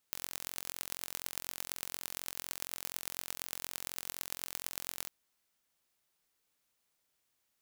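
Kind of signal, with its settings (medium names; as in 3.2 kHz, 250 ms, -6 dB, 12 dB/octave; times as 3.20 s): pulse train 44.1 per s, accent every 5, -8.5 dBFS 4.95 s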